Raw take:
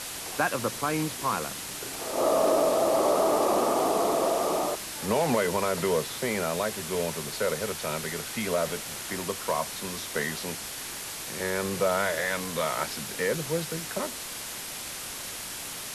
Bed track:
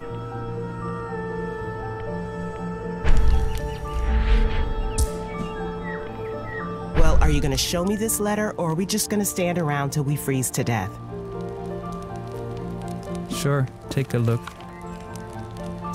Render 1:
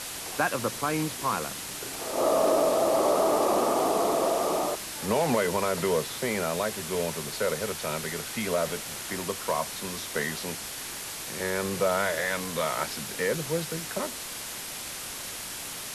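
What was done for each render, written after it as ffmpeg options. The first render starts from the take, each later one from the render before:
-af anull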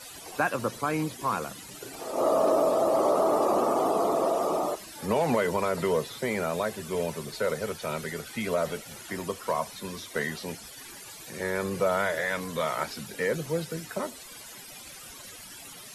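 -af "afftdn=nr=15:nf=-38"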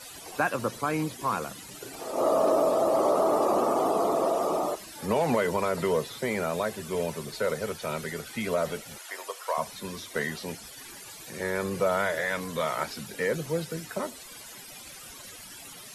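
-filter_complex "[0:a]asettb=1/sr,asplit=3[a][b][c];[a]atrim=end=8.984[d];[b]atrim=start=8.98:end=9.58,asetpts=PTS-STARTPTS,afade=t=in:d=0.004:c=qsin,afade=t=out:st=0.596:d=0.004:c=qsin,highpass=f=520:w=0.5412,highpass=f=520:w=1.3066[e];[c]atrim=start=9.576[f];[d][e]acrossfade=d=0.004:c1=hsin:c2=qsin[g];[g][f]acrossfade=d=0.004:c1=qsin:c2=hsin"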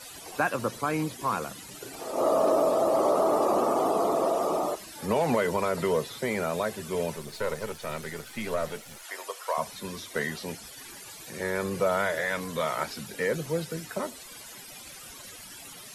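-filter_complex "[0:a]asettb=1/sr,asplit=3[a][b][c];[a]atrim=end=7.164[d];[b]atrim=start=7.16:end=9.03,asetpts=PTS-STARTPTS,afade=t=in:d=0.004:c=qsin,afade=t=out:st=1.866:d=0.004:c=qsin,aeval=exprs='if(lt(val(0),0),0.447*val(0),val(0))':c=same[e];[c]atrim=start=9.026[f];[d][e]acrossfade=d=0.004:c1=hsin:c2=qsin[g];[g][f]acrossfade=d=0.004:c1=qsin:c2=hsin"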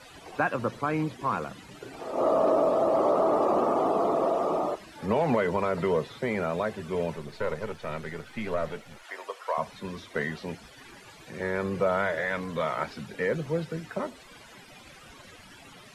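-filter_complex "[0:a]acrossover=split=9400[a][b];[b]acompressor=threshold=-59dB:ratio=4:attack=1:release=60[c];[a][c]amix=inputs=2:normalize=0,bass=f=250:g=2,treble=f=4k:g=-12"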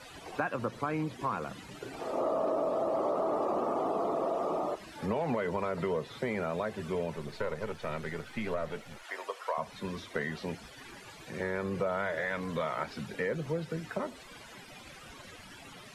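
-af "acompressor=threshold=-31dB:ratio=2.5"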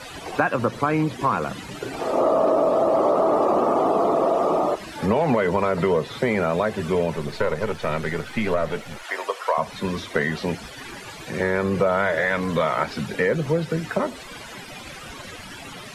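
-af "volume=11.5dB"

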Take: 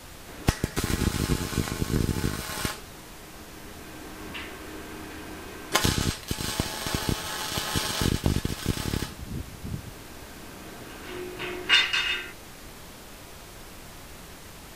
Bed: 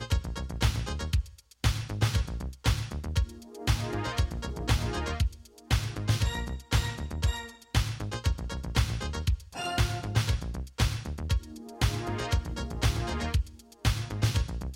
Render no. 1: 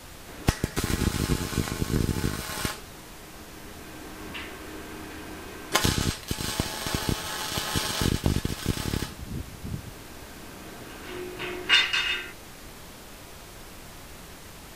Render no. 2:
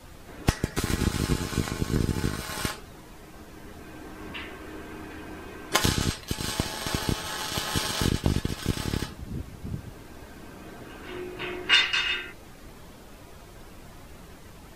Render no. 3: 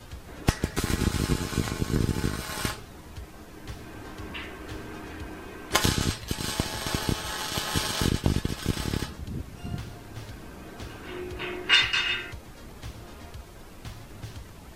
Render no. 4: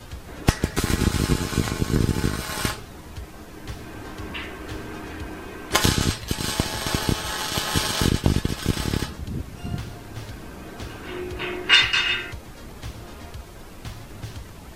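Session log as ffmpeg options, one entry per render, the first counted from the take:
-af anull
-af "afftdn=nr=8:nf=-45"
-filter_complex "[1:a]volume=-15dB[a];[0:a][a]amix=inputs=2:normalize=0"
-af "volume=4.5dB,alimiter=limit=-2dB:level=0:latency=1"

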